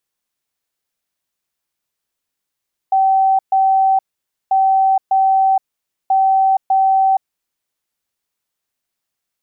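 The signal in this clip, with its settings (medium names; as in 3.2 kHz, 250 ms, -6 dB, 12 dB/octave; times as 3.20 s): beep pattern sine 770 Hz, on 0.47 s, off 0.13 s, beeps 2, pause 0.52 s, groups 3, -10 dBFS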